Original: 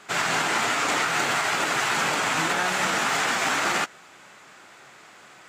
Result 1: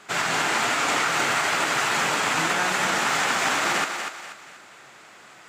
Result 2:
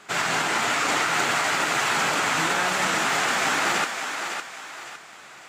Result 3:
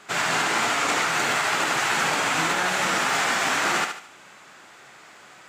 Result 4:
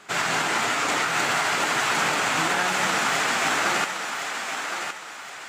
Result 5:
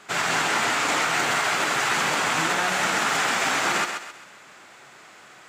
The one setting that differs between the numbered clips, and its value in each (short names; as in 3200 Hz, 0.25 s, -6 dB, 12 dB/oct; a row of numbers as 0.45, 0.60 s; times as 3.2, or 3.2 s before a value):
thinning echo, time: 241, 558, 73, 1065, 132 ms